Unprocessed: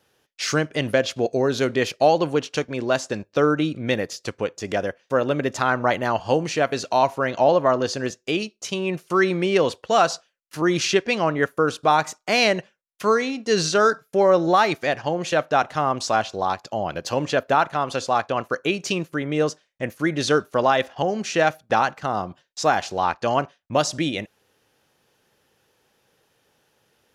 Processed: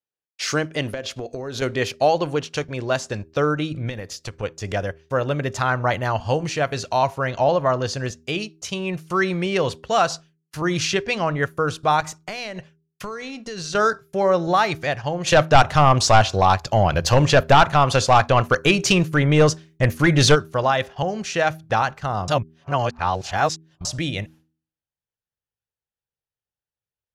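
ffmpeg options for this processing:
-filter_complex "[0:a]asettb=1/sr,asplit=3[s0][s1][s2];[s0]atrim=end=0.934[s3];[s1]atrim=start=0.93:end=1.62,asetpts=PTS-STARTPTS,afade=t=in:d=0.004:c=qsin,afade=t=out:st=0.686:d=0.004:c=qsin,acompressor=threshold=0.0631:ratio=12:attack=3.2:release=140:knee=1:detection=peak[s4];[s2]atrim=start=1.616[s5];[s3][s4]acrossfade=d=0.004:c1=hsin:c2=qsin[s6];[s6][s5]acrossfade=d=0.004:c1=qsin:c2=hsin,asplit=3[s7][s8][s9];[s7]afade=t=out:st=3.88:d=0.02[s10];[s8]acompressor=threshold=0.0447:ratio=6:attack=3.2:release=140:knee=1:detection=peak,afade=t=in:st=3.88:d=0.02,afade=t=out:st=4.42:d=0.02[s11];[s9]afade=t=in:st=4.42:d=0.02[s12];[s10][s11][s12]amix=inputs=3:normalize=0,asettb=1/sr,asplit=3[s13][s14][s15];[s13]atrim=end=12.004[s16];[s14]atrim=start=12:end=13.75,asetpts=PTS-STARTPTS,afade=t=in:d=0.004:c=qsin,afade=t=out:st=1.746:d=0.004:c=qsin,acompressor=threshold=0.0501:ratio=12:attack=3.2:release=140:knee=1:detection=peak[s17];[s15]atrim=start=13.746[s18];[s16][s17]acrossfade=d=0.004:c1=hsin:c2=qsin[s19];[s19][s18]acrossfade=d=0.004:c1=qsin:c2=hsin,asplit=3[s20][s21][s22];[s20]afade=t=out:st=15.26:d=0.02[s23];[s21]aeval=exprs='0.501*sin(PI/2*1.78*val(0)/0.501)':c=same,afade=t=in:st=15.26:d=0.02,afade=t=out:st=20.34:d=0.02[s24];[s22]afade=t=in:st=20.34:d=0.02[s25];[s23][s24][s25]amix=inputs=3:normalize=0,asplit=3[s26][s27][s28];[s26]atrim=end=22.282[s29];[s27]atrim=start=22.278:end=23.852,asetpts=PTS-STARTPTS,areverse[s30];[s28]atrim=start=23.848[s31];[s29][s30]acrossfade=d=0.004:c1=hsin:c2=hsin[s32];[s32][s31]acrossfade=d=0.004:c1=hsin:c2=hsin,agate=range=0.0224:threshold=0.00631:ratio=3:detection=peak,asubboost=boost=8:cutoff=93,bandreject=f=79.7:t=h:w=4,bandreject=f=159.4:t=h:w=4,bandreject=f=239.1:t=h:w=4,bandreject=f=318.8:t=h:w=4,bandreject=f=398.5:t=h:w=4"

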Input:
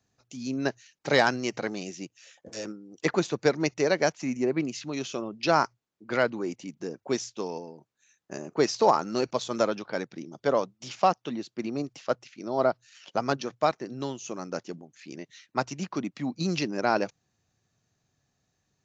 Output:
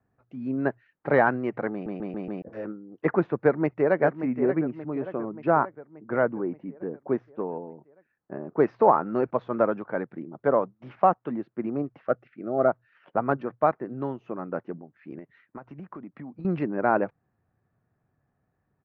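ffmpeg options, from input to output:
-filter_complex "[0:a]asplit=2[s0][s1];[s1]afade=t=in:st=3.39:d=0.01,afade=t=out:st=4:d=0.01,aecho=0:1:580|1160|1740|2320|2900|3480|4060:0.334965|0.200979|0.120588|0.0723525|0.0434115|0.0260469|0.0156281[s2];[s0][s2]amix=inputs=2:normalize=0,asettb=1/sr,asplit=3[s3][s4][s5];[s3]atrim=end=4.594[s6];[s4]atrim=start=4.59:end=8.6,asetpts=PTS-STARTPTS,afade=t=in:d=0.004:c=qsin,afade=t=out:st=4.006:d=0.004:c=qsin,highshelf=f=2400:g=-10.5[s7];[s5]atrim=start=8.596[s8];[s6][s7]acrossfade=d=0.004:c1=hsin:c2=qsin[s9];[s9][s8]acrossfade=d=0.004:c1=qsin:c2=hsin,asettb=1/sr,asplit=3[s10][s11][s12];[s10]atrim=end=12.084[s13];[s11]atrim=start=12.08:end=12.68,asetpts=PTS-STARTPTS,afade=t=in:d=0.004:c=qsin,afade=t=out:st=0.596:d=0.004:c=qsin,asuperstop=centerf=960:order=4:qfactor=2.7[s14];[s12]atrim=start=12.676[s15];[s13][s14]acrossfade=d=0.004:c1=hsin:c2=qsin[s16];[s16][s15]acrossfade=d=0.004:c1=qsin:c2=hsin,asettb=1/sr,asplit=3[s17][s18][s19];[s17]atrim=end=15.184[s20];[s18]atrim=start=15.18:end=16.45,asetpts=PTS-STARTPTS,afade=t=in:d=0.004:c=qsin,afade=t=out:st=1.266:d=0.004:c=qsin,acompressor=threshold=0.0126:ratio=16:attack=3.2:release=140:knee=1:detection=peak[s21];[s19]atrim=start=16.446[s22];[s20][s21]acrossfade=d=0.004:c1=hsin:c2=qsin[s23];[s23][s22]acrossfade=d=0.004:c1=qsin:c2=hsin,asplit=6[s24][s25][s26][s27][s28][s29];[s24]atrim=end=1.862[s30];[s25]atrim=start=1.718:end=1.862[s31];[s26]atrim=start=1.718:end=1.862[s32];[s27]atrim=start=1.718:end=1.862[s33];[s28]atrim=start=1.718:end=1.862[s34];[s29]atrim=start=2.418[s35];[s30][s31]acrossfade=d=0.004:c1=hsin:c2=hsin[s36];[s36][s32]acrossfade=d=0.004:c1=hsin:c2=hsin[s37];[s37][s33]acrossfade=d=0.004:c1=hsin:c2=hsin[s38];[s38][s34]acrossfade=d=0.004:c1=hsin:c2=hsin[s39];[s39][s35]acrossfade=d=0.004:c1=hsin:c2=hsin,lowpass=f=1700:w=0.5412,lowpass=f=1700:w=1.3066,volume=1.33"

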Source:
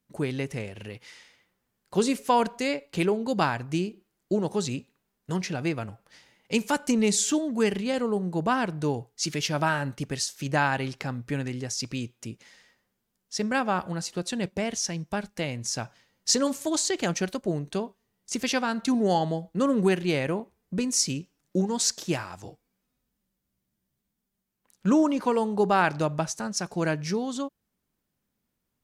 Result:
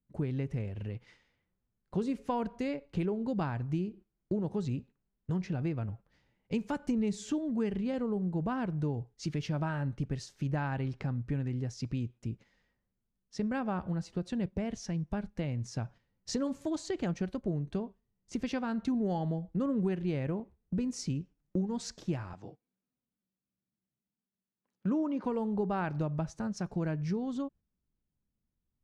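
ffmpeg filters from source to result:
-filter_complex "[0:a]asettb=1/sr,asplit=3[s0][s1][s2];[s0]atrim=end=22.334[s3];[s1]atrim=start=22.33:end=25.24,asetpts=PTS-STARTPTS,afade=t=in:d=0.004:c=qsin,afade=t=out:st=2.906:d=0.004:c=qsin,highpass=200,lowpass=6100[s4];[s2]atrim=start=25.236[s5];[s3][s4]acrossfade=d=0.004:c1=hsin:c2=qsin[s6];[s6][s5]acrossfade=d=0.004:c1=qsin:c2=hsin,agate=range=0.447:threshold=0.00398:ratio=16:detection=peak,aemphasis=mode=reproduction:type=riaa,acompressor=threshold=0.0708:ratio=2.5,volume=0.422"

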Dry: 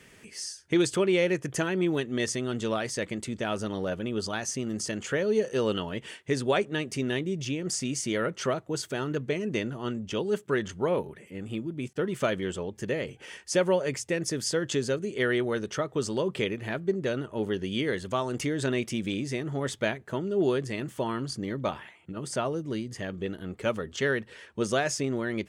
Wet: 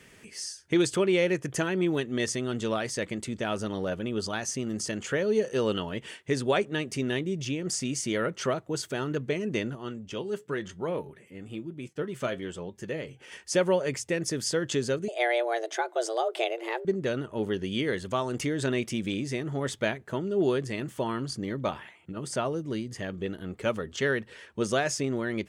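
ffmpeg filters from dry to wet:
-filter_complex "[0:a]asettb=1/sr,asplit=3[s0][s1][s2];[s0]atrim=end=9.754[s3];[s1]atrim=start=9.75:end=13.32,asetpts=PTS-STARTPTS,afade=t=in:d=0.004:c=qsin,afade=t=out:st=3.566:d=0.004:c=qsin,flanger=delay=5.1:depth=3:regen=72:speed=1:shape=triangular[s4];[s2]atrim=start=13.316[s5];[s3][s4]acrossfade=d=0.004:c1=hsin:c2=qsin[s6];[s6][s5]acrossfade=d=0.004:c1=qsin:c2=hsin,asettb=1/sr,asplit=3[s7][s8][s9];[s7]atrim=end=15.084[s10];[s8]atrim=start=15.08:end=16.85,asetpts=PTS-STARTPTS,afade=t=in:d=0.004:c=qsin,afade=t=out:st=1.766:d=0.004:c=qsin,afreqshift=230[s11];[s9]atrim=start=16.846[s12];[s10][s11]acrossfade=d=0.004:c1=hsin:c2=qsin[s13];[s13][s12]acrossfade=d=0.004:c1=qsin:c2=hsin"

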